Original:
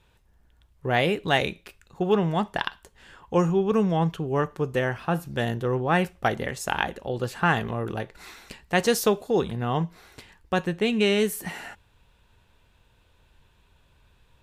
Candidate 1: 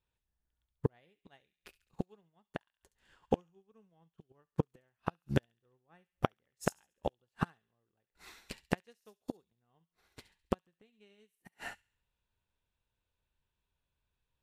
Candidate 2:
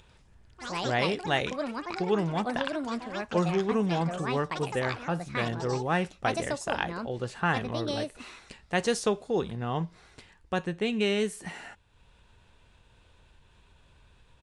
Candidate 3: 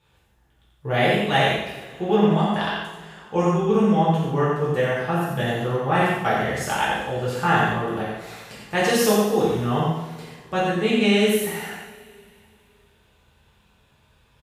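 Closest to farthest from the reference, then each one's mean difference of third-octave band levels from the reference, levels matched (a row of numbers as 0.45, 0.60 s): 2, 3, 1; 5.0, 7.5, 16.5 dB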